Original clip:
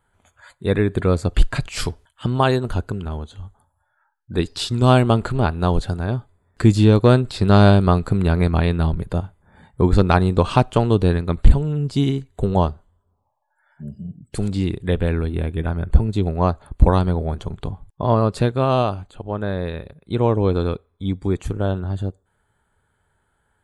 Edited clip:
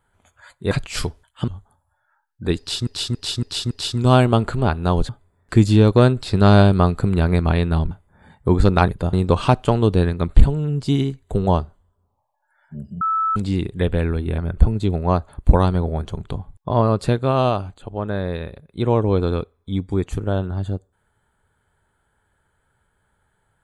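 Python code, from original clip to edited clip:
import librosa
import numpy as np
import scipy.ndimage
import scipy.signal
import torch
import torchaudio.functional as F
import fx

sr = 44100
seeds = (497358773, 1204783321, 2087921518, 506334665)

y = fx.edit(x, sr, fx.cut(start_s=0.71, length_s=0.82),
    fx.cut(start_s=2.3, length_s=1.07),
    fx.repeat(start_s=4.48, length_s=0.28, count=5),
    fx.cut(start_s=5.86, length_s=0.31),
    fx.move(start_s=8.99, length_s=0.25, to_s=10.21),
    fx.bleep(start_s=14.09, length_s=0.35, hz=1310.0, db=-17.0),
    fx.cut(start_s=15.46, length_s=0.25), tone=tone)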